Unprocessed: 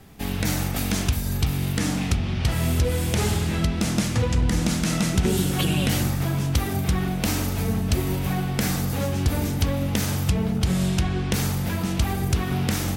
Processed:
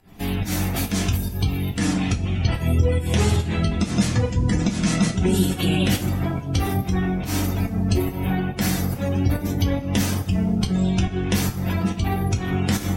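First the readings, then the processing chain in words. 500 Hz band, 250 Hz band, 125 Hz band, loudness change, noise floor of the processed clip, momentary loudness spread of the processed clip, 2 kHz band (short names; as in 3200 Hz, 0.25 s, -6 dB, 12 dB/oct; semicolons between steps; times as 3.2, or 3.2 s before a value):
+2.0 dB, +3.0 dB, +1.5 dB, +1.5 dB, -31 dBFS, 4 LU, +0.5 dB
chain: pump 141 bpm, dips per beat 1, -20 dB, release 0.165 s; spectral gate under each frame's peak -30 dB strong; two-slope reverb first 0.2 s, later 1.6 s, from -21 dB, DRR 1 dB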